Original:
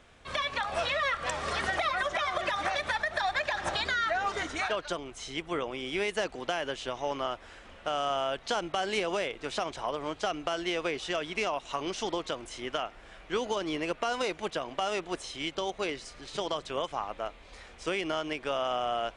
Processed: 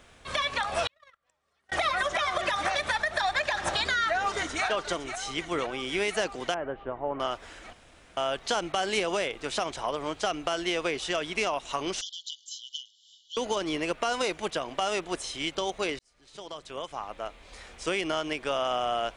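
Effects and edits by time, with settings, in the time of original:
0:00.87–0:01.72: noise gate −25 dBFS, range −46 dB
0:04.06–0:04.64: delay throw 510 ms, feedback 75%, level −10 dB
0:06.54–0:07.20: Bessel low-pass filter 1,100 Hz, order 4
0:07.73–0:08.17: fill with room tone
0:12.01–0:13.37: linear-phase brick-wall band-pass 2,900–7,600 Hz
0:15.99–0:17.70: fade in
whole clip: high-shelf EQ 7,200 Hz +9 dB; level +2 dB

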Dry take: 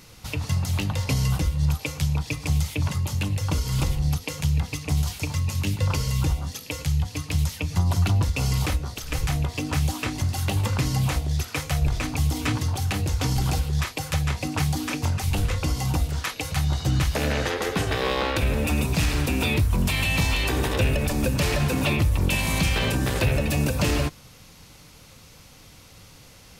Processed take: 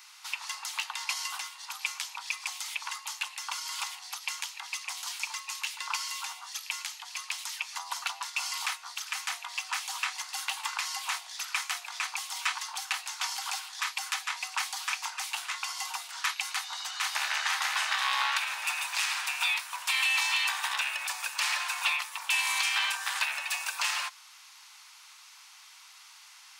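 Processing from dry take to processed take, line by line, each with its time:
0:16.54–0:17.46: delay throw 490 ms, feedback 65%, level −3 dB
whole clip: Butterworth high-pass 870 Hz 48 dB per octave; parametric band 13,000 Hz −10 dB 0.34 octaves

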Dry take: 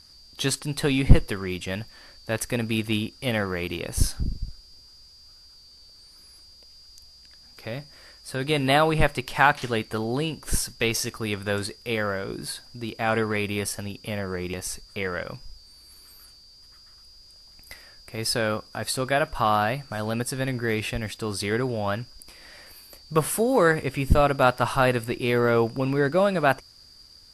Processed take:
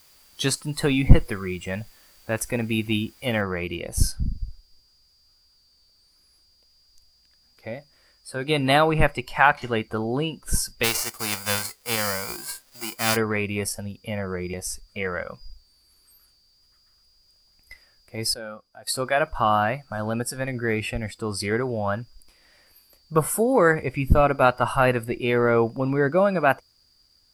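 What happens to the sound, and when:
0:03.41: noise floor change −46 dB −66 dB
0:10.83–0:13.15: spectral envelope flattened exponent 0.3
0:18.34–0:18.87: clip gain −11 dB
whole clip: noise reduction from a noise print of the clip's start 12 dB; level +1.5 dB

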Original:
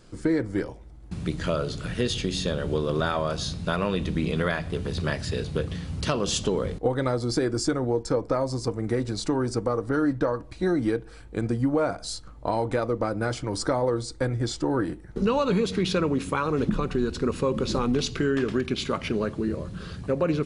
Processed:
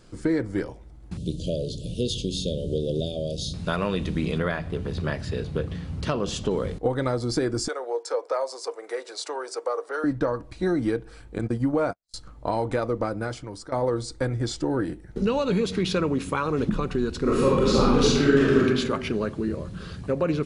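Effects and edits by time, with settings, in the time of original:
0:01.17–0:03.54: elliptic band-stop filter 570–3,200 Hz
0:04.38–0:06.51: high-shelf EQ 3,300 Hz −9 dB
0:07.68–0:10.04: Butterworth high-pass 440 Hz
0:11.38–0:12.14: noise gate −29 dBFS, range −56 dB
0:13.02–0:13.72: fade out, to −17.5 dB
0:14.56–0:15.61: parametric band 1,100 Hz −6 dB 0.52 octaves
0:17.21–0:18.66: thrown reverb, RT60 1.2 s, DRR −5.5 dB

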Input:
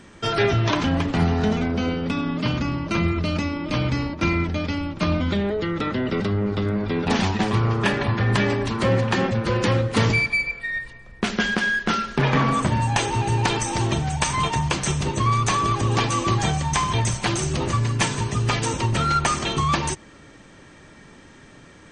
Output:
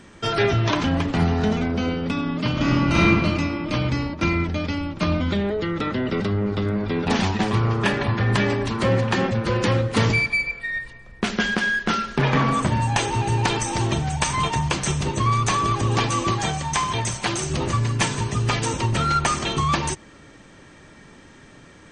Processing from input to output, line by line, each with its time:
0:02.52–0:03.01: thrown reverb, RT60 1.9 s, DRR −7 dB
0:16.31–0:17.50: low-shelf EQ 190 Hz −7 dB

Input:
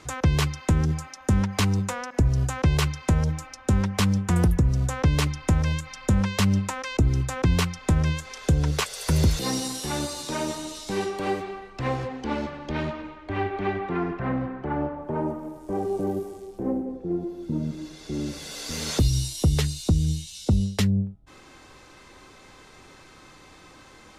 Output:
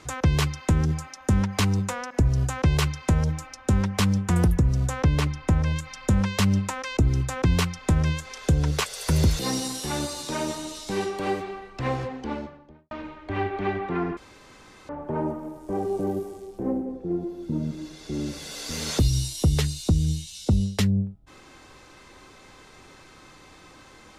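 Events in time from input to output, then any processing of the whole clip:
0:05.04–0:05.76: high-shelf EQ 3,400 Hz −7 dB
0:12.01–0:12.91: fade out and dull
0:14.17–0:14.89: fill with room tone

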